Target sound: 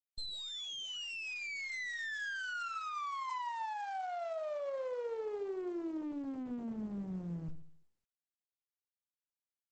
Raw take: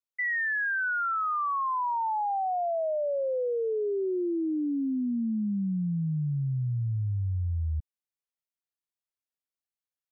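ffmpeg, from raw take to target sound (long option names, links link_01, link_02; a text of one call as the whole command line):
ffmpeg -i in.wav -filter_complex "[0:a]acrossover=split=690[link_01][link_02];[link_01]equalizer=frequency=78:width_type=o:width=0.84:gain=-5.5[link_03];[link_02]alimiter=level_in=13.5dB:limit=-24dB:level=0:latency=1:release=29,volume=-13.5dB[link_04];[link_03][link_04]amix=inputs=2:normalize=0,asetrate=45938,aresample=44100,aresample=16000,aeval=exprs='abs(val(0))':channel_layout=same,aresample=44100,acompressor=threshold=-35dB:ratio=5,acrusher=bits=9:dc=4:mix=0:aa=0.000001,asplit=2[link_05][link_06];[link_06]adelay=69,lowpass=frequency=820:poles=1,volume=-11dB,asplit=2[link_07][link_08];[link_08]adelay=69,lowpass=frequency=820:poles=1,volume=0.48,asplit=2[link_09][link_10];[link_10]adelay=69,lowpass=frequency=820:poles=1,volume=0.48,asplit=2[link_11][link_12];[link_12]adelay=69,lowpass=frequency=820:poles=1,volume=0.48,asplit=2[link_13][link_14];[link_14]adelay=69,lowpass=frequency=820:poles=1,volume=0.48[link_15];[link_05][link_07][link_09][link_11][link_13][link_15]amix=inputs=6:normalize=0,volume=4dB" -ar 48000 -c:a libopus -b:a 12k out.opus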